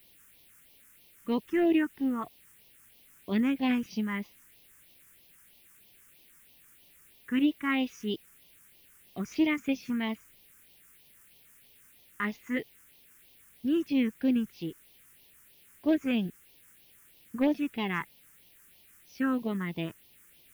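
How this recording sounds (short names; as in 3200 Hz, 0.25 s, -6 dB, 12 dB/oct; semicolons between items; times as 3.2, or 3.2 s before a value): a quantiser's noise floor 10-bit, dither triangular; phasing stages 4, 3.1 Hz, lowest notch 670–1400 Hz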